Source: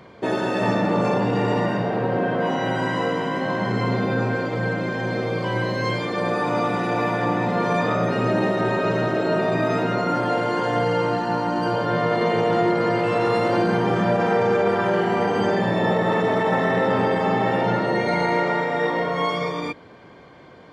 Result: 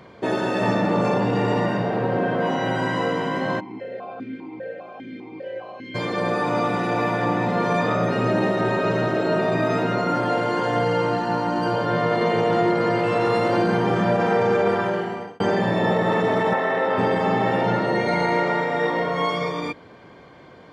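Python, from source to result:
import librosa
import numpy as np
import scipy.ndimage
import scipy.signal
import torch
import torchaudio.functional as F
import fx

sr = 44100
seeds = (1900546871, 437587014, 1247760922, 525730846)

y = fx.vowel_held(x, sr, hz=5.0, at=(3.59, 5.94), fade=0.02)
y = fx.bass_treble(y, sr, bass_db=-15, treble_db=-8, at=(16.53, 16.98))
y = fx.edit(y, sr, fx.fade_out_span(start_s=14.72, length_s=0.68), tone=tone)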